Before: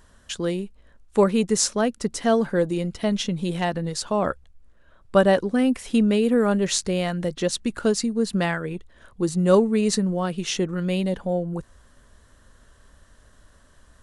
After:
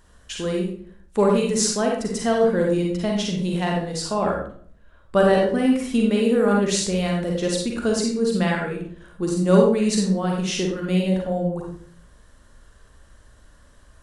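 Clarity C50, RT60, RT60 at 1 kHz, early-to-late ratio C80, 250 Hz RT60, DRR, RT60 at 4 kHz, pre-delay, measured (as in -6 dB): 1.5 dB, 0.55 s, 0.50 s, 7.0 dB, 0.70 s, -1.0 dB, 0.40 s, 38 ms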